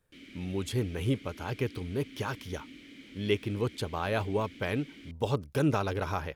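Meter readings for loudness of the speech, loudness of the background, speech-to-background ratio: -33.0 LUFS, -50.0 LUFS, 17.0 dB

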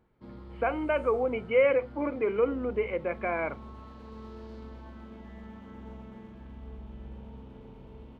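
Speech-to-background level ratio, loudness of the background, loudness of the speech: 18.0 dB, -46.5 LUFS, -28.5 LUFS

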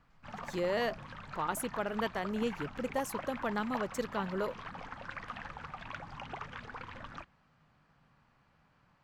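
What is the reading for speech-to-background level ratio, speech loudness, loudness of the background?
8.5 dB, -36.0 LUFS, -44.5 LUFS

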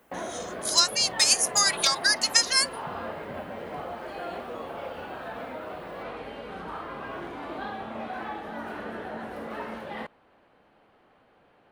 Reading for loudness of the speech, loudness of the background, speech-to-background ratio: -21.5 LUFS, -37.0 LUFS, 15.5 dB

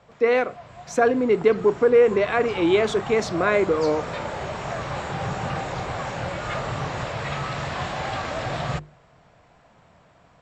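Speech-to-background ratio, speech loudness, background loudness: 9.5 dB, -21.0 LUFS, -30.5 LUFS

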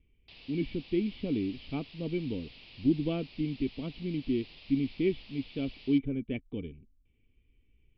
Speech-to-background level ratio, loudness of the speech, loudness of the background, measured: 17.5 dB, -33.5 LUFS, -51.0 LUFS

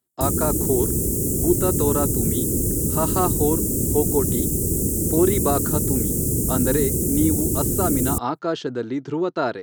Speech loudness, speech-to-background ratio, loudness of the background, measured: -25.0 LUFS, -4.0 dB, -21.0 LUFS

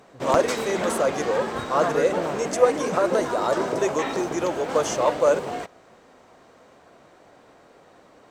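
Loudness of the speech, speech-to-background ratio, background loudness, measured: -24.5 LUFS, 3.5 dB, -28.0 LUFS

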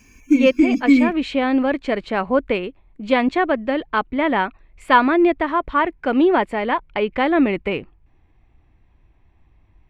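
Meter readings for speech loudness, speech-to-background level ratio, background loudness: -20.0 LUFS, -2.5 dB, -17.5 LUFS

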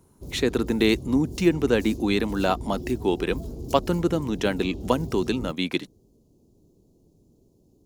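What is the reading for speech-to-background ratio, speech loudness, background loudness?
12.5 dB, -25.0 LUFS, -37.5 LUFS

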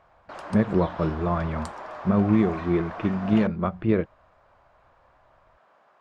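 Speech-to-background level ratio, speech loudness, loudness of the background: 12.5 dB, -25.0 LUFS, -37.5 LUFS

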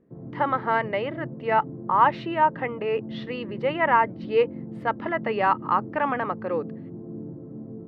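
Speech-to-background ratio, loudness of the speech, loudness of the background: 13.0 dB, -25.0 LUFS, -38.0 LUFS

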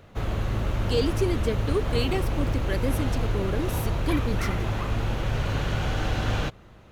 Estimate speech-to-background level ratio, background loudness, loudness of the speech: -2.0 dB, -28.5 LUFS, -30.5 LUFS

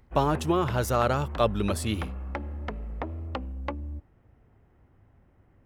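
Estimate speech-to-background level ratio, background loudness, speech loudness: 10.0 dB, -37.0 LUFS, -27.0 LUFS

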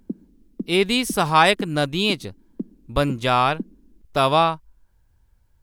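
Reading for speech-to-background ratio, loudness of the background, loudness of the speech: 17.0 dB, -37.5 LUFS, -20.5 LUFS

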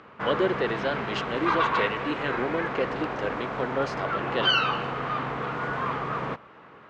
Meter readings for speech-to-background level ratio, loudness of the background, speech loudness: -2.0 dB, -28.5 LUFS, -30.5 LUFS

